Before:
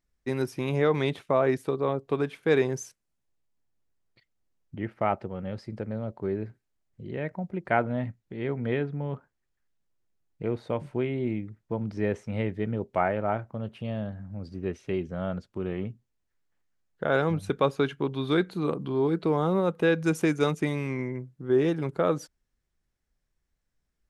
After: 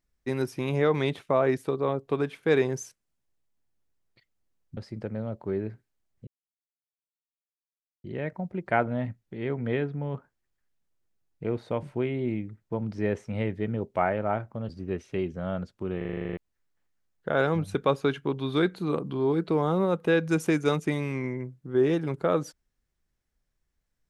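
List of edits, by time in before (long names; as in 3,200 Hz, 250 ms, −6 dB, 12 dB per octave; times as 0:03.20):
0:04.77–0:05.53: remove
0:07.03: splice in silence 1.77 s
0:13.68–0:14.44: remove
0:15.72: stutter in place 0.04 s, 10 plays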